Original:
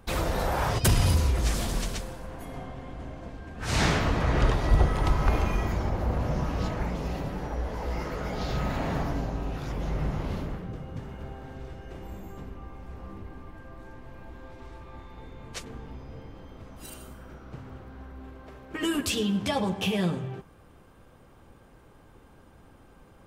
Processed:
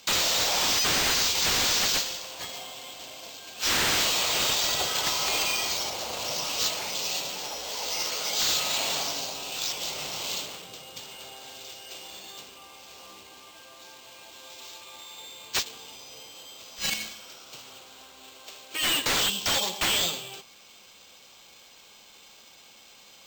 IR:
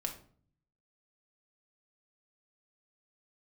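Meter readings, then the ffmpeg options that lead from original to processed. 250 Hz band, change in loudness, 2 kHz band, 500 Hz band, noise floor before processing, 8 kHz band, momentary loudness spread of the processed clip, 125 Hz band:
−11.0 dB, +4.0 dB, +5.5 dB, −4.0 dB, −54 dBFS, +12.5 dB, 21 LU, −18.0 dB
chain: -filter_complex "[0:a]highpass=120,acrossover=split=460 7100:gain=0.126 1 0.141[link_01][link_02][link_03];[link_01][link_02][link_03]amix=inputs=3:normalize=0,acrossover=split=740|1900[link_04][link_05][link_06];[link_06]asoftclip=type=tanh:threshold=-34.5dB[link_07];[link_04][link_05][link_07]amix=inputs=3:normalize=0,aexciter=amount=11.3:drive=6.8:freq=2700,acrusher=samples=4:mix=1:aa=0.000001,aeval=exprs='0.106*(abs(mod(val(0)/0.106+3,4)-2)-1)':channel_layout=same"

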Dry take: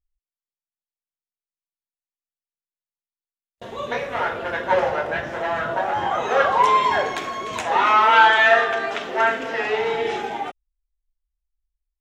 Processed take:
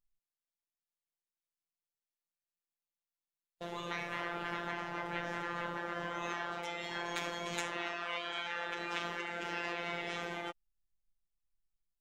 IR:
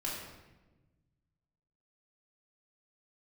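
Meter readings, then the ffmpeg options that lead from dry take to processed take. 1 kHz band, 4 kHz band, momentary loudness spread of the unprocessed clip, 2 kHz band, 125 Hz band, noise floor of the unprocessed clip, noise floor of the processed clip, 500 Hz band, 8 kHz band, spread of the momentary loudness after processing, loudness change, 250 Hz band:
−22.0 dB, −13.0 dB, 14 LU, −17.5 dB, −8.5 dB, below −85 dBFS, below −85 dBFS, −20.5 dB, −9.0 dB, 2 LU, −19.0 dB, −9.5 dB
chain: -af "acompressor=threshold=-25dB:ratio=4,afftfilt=real='hypot(re,im)*cos(PI*b)':imag='0':win_size=1024:overlap=0.75,afftfilt=real='re*lt(hypot(re,im),0.1)':imag='im*lt(hypot(re,im),0.1)':win_size=1024:overlap=0.75,volume=-1.5dB"

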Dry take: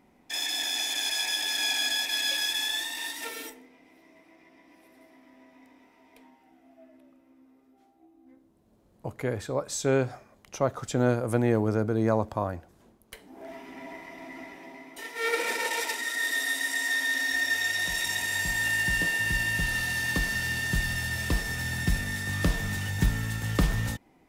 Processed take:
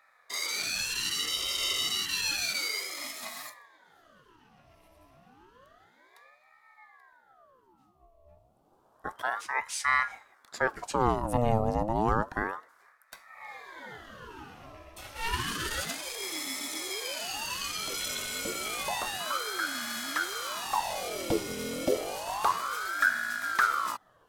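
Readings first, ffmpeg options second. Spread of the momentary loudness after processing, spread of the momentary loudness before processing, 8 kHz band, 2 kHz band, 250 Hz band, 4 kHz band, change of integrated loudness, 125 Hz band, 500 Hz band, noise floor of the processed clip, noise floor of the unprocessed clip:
18 LU, 17 LU, −1.5 dB, −5.0 dB, −5.5 dB, −2.5 dB, −3.0 dB, −8.5 dB, −3.5 dB, −65 dBFS, −62 dBFS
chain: -af "superequalizer=10b=0.282:11b=0.316,aeval=exprs='val(0)*sin(2*PI*950*n/s+950*0.65/0.3*sin(2*PI*0.3*n/s))':channel_layout=same,volume=1dB"

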